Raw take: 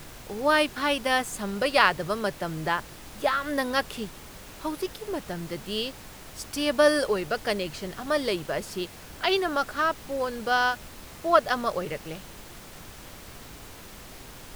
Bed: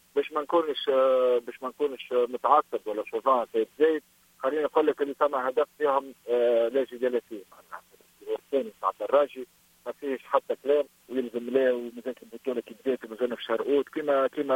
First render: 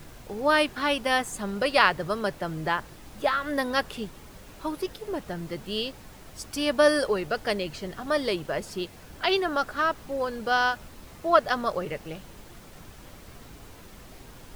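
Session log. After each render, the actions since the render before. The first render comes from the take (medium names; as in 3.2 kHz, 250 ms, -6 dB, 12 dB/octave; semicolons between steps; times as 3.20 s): noise reduction 6 dB, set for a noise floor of -45 dBFS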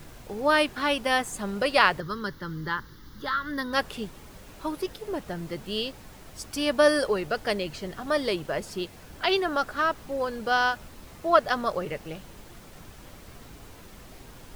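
2.00–3.73 s: static phaser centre 2.5 kHz, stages 6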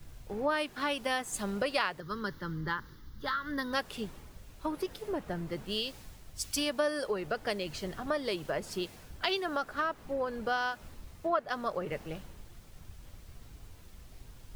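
compression 5:1, threshold -30 dBFS, peak gain reduction 15.5 dB; three bands expanded up and down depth 70%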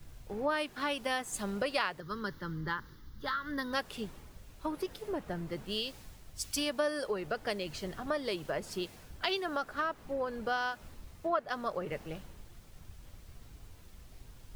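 trim -1.5 dB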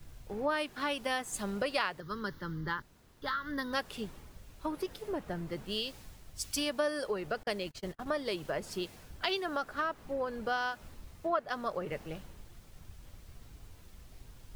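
2.82–3.22 s: room tone; 7.43–8.31 s: gate -42 dBFS, range -37 dB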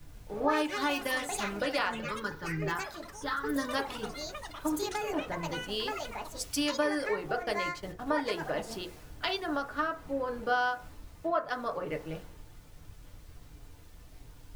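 FDN reverb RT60 0.34 s, low-frequency decay 0.75×, high-frequency decay 0.3×, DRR 3.5 dB; ever faster or slower copies 147 ms, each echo +6 st, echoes 3, each echo -6 dB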